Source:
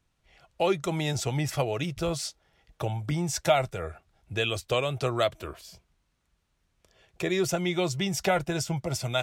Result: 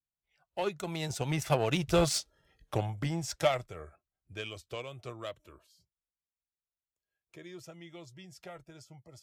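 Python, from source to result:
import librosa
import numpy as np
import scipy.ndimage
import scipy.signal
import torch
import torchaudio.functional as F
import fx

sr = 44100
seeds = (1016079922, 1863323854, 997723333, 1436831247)

y = fx.doppler_pass(x, sr, speed_mps=17, closest_m=8.3, pass_at_s=2.14)
y = fx.noise_reduce_blind(y, sr, reduce_db=15)
y = fx.cheby_harmonics(y, sr, harmonics=(7,), levels_db=(-24,), full_scale_db=-18.5)
y = F.gain(torch.from_numpy(y), 4.5).numpy()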